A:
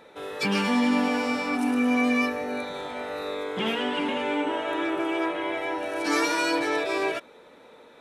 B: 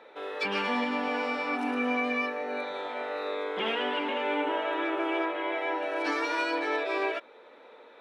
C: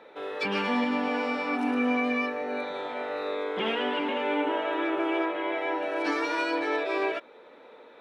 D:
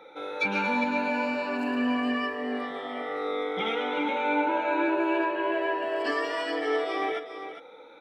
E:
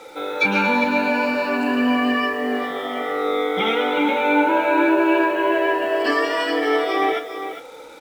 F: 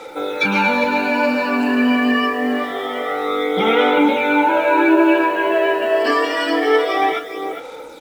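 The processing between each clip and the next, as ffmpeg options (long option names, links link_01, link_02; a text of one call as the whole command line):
ffmpeg -i in.wav -filter_complex "[0:a]acrossover=split=290 4200:gain=0.0794 1 0.126[link_01][link_02][link_03];[link_01][link_02][link_03]amix=inputs=3:normalize=0,alimiter=limit=-19dB:level=0:latency=1:release=450" out.wav
ffmpeg -i in.wav -af "lowshelf=frequency=220:gain=10.5" out.wav
ffmpeg -i in.wav -af "afftfilt=real='re*pow(10,16/40*sin(2*PI*(1.4*log(max(b,1)*sr/1024/100)/log(2)-(0.26)*(pts-256)/sr)))':imag='im*pow(10,16/40*sin(2*PI*(1.4*log(max(b,1)*sr/1024/100)/log(2)-(0.26)*(pts-256)/sr)))':win_size=1024:overlap=0.75,aecho=1:1:404:0.316,volume=-2.5dB" out.wav
ffmpeg -i in.wav -filter_complex "[0:a]acrusher=bits=8:mix=0:aa=0.5,asplit=2[link_01][link_02];[link_02]adelay=31,volume=-11.5dB[link_03];[link_01][link_03]amix=inputs=2:normalize=0,volume=8.5dB" out.wav
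ffmpeg -i in.wav -af "aphaser=in_gain=1:out_gain=1:delay=4.7:decay=0.39:speed=0.26:type=sinusoidal,volume=2dB" out.wav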